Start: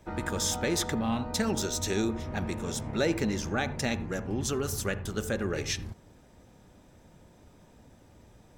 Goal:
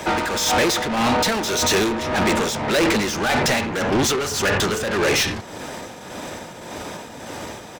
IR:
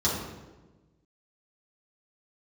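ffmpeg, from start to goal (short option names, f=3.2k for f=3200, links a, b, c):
-filter_complex "[0:a]acrossover=split=360|7100[a][b][c];[c]acompressor=threshold=-58dB:ratio=6[d];[a][b][d]amix=inputs=3:normalize=0,asplit=2[e][f];[f]highpass=f=720:p=1,volume=36dB,asoftclip=type=tanh:threshold=-13.5dB[g];[e][g]amix=inputs=2:normalize=0,lowpass=f=7.3k:p=1,volume=-6dB,tremolo=f=1.6:d=0.55,atempo=1.1,volume=3dB"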